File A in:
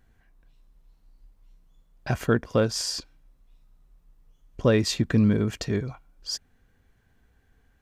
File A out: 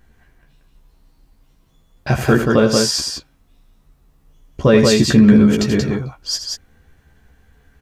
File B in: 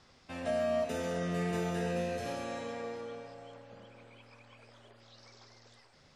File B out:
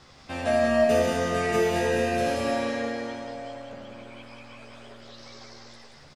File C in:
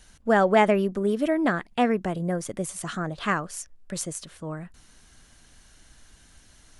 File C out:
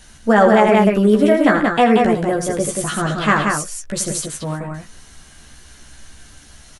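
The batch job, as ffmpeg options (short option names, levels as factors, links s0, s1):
-filter_complex "[0:a]asplit=2[s0][s1];[s1]adelay=14,volume=0.631[s2];[s0][s2]amix=inputs=2:normalize=0,aecho=1:1:81.63|180.8:0.316|0.631,alimiter=level_in=2.82:limit=0.891:release=50:level=0:latency=1,volume=0.891"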